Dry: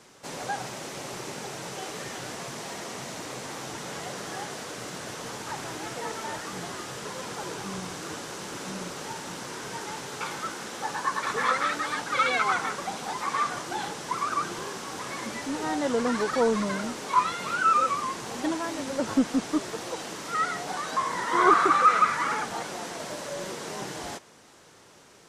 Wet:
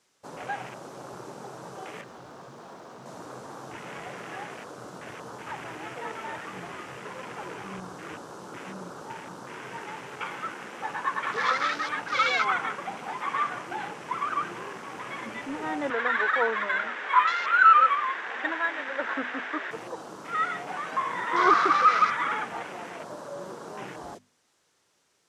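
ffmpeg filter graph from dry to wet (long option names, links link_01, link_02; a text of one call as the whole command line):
ffmpeg -i in.wav -filter_complex "[0:a]asettb=1/sr,asplit=3[link_01][link_02][link_03];[link_01]atrim=end=2.014[link_04];[link_02]atrim=start=2.01:end=3.06,asetpts=PTS-STARTPTS,afade=type=in:duration=0.004:curve=qsin,afade=type=out:start_time=1.046:duration=0.004:curve=qsin,lowpass=5800,asoftclip=type=hard:threshold=-38.5dB,asplit=2[link_05][link_06];[link_06]adelay=21,volume=-13dB[link_07];[link_05][link_07]amix=inputs=2:normalize=0,atrim=end_sample=46305[link_08];[link_03]atrim=start=3.056[link_09];[link_04][link_08]acrossfade=duration=0.004:curve1=hsin:curve2=qsin[link_10];[link_10][link_09]acrossfade=duration=0.004:curve1=qsin:curve2=hsin,asettb=1/sr,asplit=3[link_11][link_12][link_13];[link_11]atrim=end=15.904[link_14];[link_12]atrim=start=15.9:end=19.71,asetpts=PTS-STARTPTS,afade=type=in:duration=0.004:curve=qsin,afade=type=out:start_time=3.806:duration=0.004:curve=qsin,highpass=450,lowpass=4700,equalizer=frequency=1700:width=1.9:gain=12[link_15];[link_13]atrim=start=19.706[link_16];[link_14][link_15]acrossfade=duration=0.004:curve1=hsin:curve2=qsin[link_17];[link_17][link_16]acrossfade=duration=0.004:curve1=qsin:curve2=hsin,afwtdn=0.0112,tiltshelf=frequency=1400:gain=-3.5,bandreject=frequency=50:width_type=h:width=6,bandreject=frequency=100:width_type=h:width=6,bandreject=frequency=150:width_type=h:width=6,bandreject=frequency=200:width_type=h:width=6,bandreject=frequency=250:width_type=h:width=6" out.wav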